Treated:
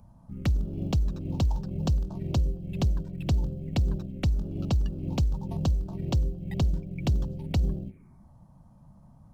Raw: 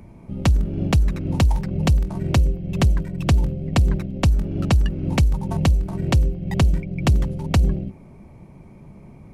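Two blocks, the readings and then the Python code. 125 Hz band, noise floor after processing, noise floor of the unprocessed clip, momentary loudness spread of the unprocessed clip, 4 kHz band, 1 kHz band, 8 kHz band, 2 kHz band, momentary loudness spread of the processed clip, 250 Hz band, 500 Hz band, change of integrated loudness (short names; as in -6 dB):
-8.0 dB, -55 dBFS, -45 dBFS, 3 LU, -9.5 dB, -11.5 dB, -12.0 dB, -14.5 dB, 3 LU, -8.0 dB, -9.0 dB, -8.0 dB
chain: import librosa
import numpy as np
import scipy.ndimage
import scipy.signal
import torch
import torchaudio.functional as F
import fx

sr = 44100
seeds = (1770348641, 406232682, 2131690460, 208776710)

y = fx.env_phaser(x, sr, low_hz=340.0, high_hz=2100.0, full_db=-18.0)
y = fx.quant_float(y, sr, bits=6)
y = F.gain(torch.from_numpy(y), -8.0).numpy()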